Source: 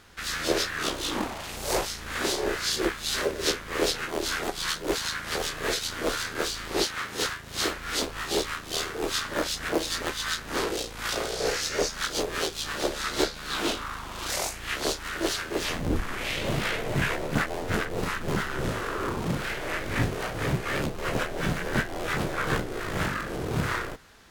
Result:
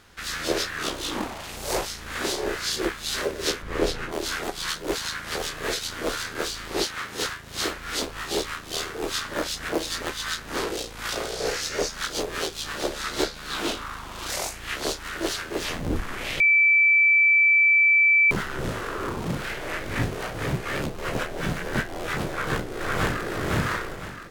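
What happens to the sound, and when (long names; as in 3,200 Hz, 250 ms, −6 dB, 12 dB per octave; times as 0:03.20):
0:03.62–0:04.12: spectral tilt −2 dB per octave
0:16.40–0:18.31: beep over 2,320 Hz −14.5 dBFS
0:22.29–0:23.26: delay throw 510 ms, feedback 35%, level 0 dB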